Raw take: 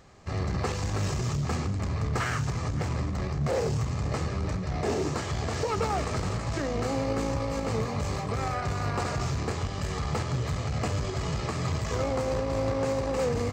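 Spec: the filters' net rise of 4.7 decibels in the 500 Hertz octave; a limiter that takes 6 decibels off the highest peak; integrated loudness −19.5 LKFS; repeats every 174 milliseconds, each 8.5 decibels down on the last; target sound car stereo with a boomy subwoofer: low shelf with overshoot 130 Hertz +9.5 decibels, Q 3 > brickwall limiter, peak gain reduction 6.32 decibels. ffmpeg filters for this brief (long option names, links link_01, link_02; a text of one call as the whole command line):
ffmpeg -i in.wav -af "equalizer=frequency=500:width_type=o:gain=6,alimiter=limit=-20dB:level=0:latency=1,lowshelf=frequency=130:width_type=q:width=3:gain=9.5,aecho=1:1:174|348|522|696:0.376|0.143|0.0543|0.0206,volume=3dB,alimiter=limit=-11dB:level=0:latency=1" out.wav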